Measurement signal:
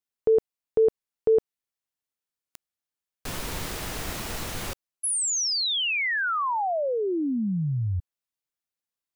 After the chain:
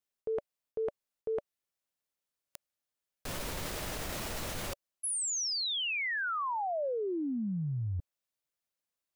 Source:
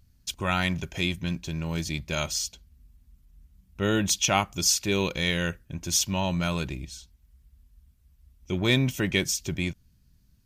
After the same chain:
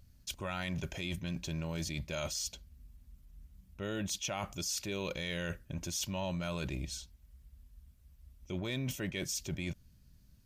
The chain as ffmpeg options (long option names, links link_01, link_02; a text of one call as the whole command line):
ffmpeg -i in.wav -af "equalizer=frequency=580:width=5.2:gain=6,areverse,acompressor=threshold=-32dB:ratio=6:attack=0.99:release=148:knee=1:detection=peak,areverse" out.wav